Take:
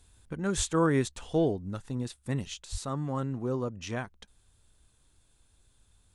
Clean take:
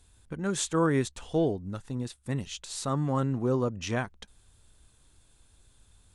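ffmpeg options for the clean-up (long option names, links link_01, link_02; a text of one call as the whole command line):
ffmpeg -i in.wav -filter_complex "[0:a]asplit=3[link_01][link_02][link_03];[link_01]afade=type=out:start_time=0.56:duration=0.02[link_04];[link_02]highpass=frequency=140:width=0.5412,highpass=frequency=140:width=1.3066,afade=type=in:start_time=0.56:duration=0.02,afade=type=out:start_time=0.68:duration=0.02[link_05];[link_03]afade=type=in:start_time=0.68:duration=0.02[link_06];[link_04][link_05][link_06]amix=inputs=3:normalize=0,asplit=3[link_07][link_08][link_09];[link_07]afade=type=out:start_time=2.71:duration=0.02[link_10];[link_08]highpass=frequency=140:width=0.5412,highpass=frequency=140:width=1.3066,afade=type=in:start_time=2.71:duration=0.02,afade=type=out:start_time=2.83:duration=0.02[link_11];[link_09]afade=type=in:start_time=2.83:duration=0.02[link_12];[link_10][link_11][link_12]amix=inputs=3:normalize=0,asetnsamples=nb_out_samples=441:pad=0,asendcmd='2.54 volume volume 4.5dB',volume=0dB" out.wav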